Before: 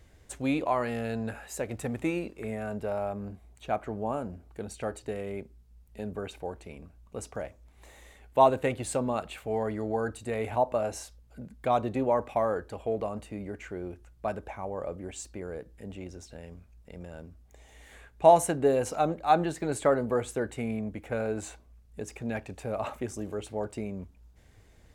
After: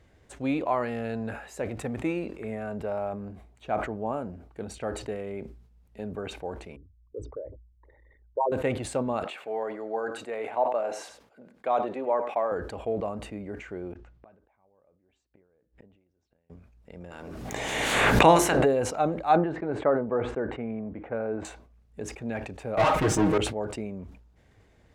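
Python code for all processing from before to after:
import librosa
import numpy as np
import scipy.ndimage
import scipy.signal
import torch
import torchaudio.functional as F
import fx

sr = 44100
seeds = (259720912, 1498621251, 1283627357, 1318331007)

y = fx.chain(x, sr, fx.envelope_sharpen(power=3.0),
    fx.lowpass(hz=3900.0, slope=24),
    fx.fixed_phaser(hz=720.0, stages=6), at=(6.76, 8.52))
y = fx.chain(y, sr, fx.highpass(hz=410.0, slope=12),
    fx.high_shelf(hz=4100.0, db=-7.0),
    fx.echo_single(ms=97, db=-16.5), at=(9.24, 12.52))
y = fx.chain(y, sr, fx.gate_flip(shuts_db=-36.0, range_db=-31),
    fx.air_absorb(metres=120.0), at=(13.92, 16.5))
y = fx.spec_clip(y, sr, under_db=20, at=(17.1, 18.64), fade=0.02)
y = fx.hum_notches(y, sr, base_hz=50, count=8, at=(17.1, 18.64), fade=0.02)
y = fx.pre_swell(y, sr, db_per_s=26.0, at=(17.1, 18.64), fade=0.02)
y = fx.chain(y, sr, fx.lowpass(hz=1600.0, slope=12),
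    fx.low_shelf(hz=110.0, db=-8.5), at=(19.36, 21.45))
y = fx.chain(y, sr, fx.leveller(passes=5),
    fx.high_shelf(hz=7500.0, db=-6.0),
    fx.comb(ms=6.4, depth=0.99), at=(22.77, 23.38))
y = fx.lowpass(y, sr, hz=2800.0, slope=6)
y = fx.low_shelf(y, sr, hz=64.0, db=-10.0)
y = fx.sustainer(y, sr, db_per_s=81.0)
y = F.gain(torch.from_numpy(y), 1.0).numpy()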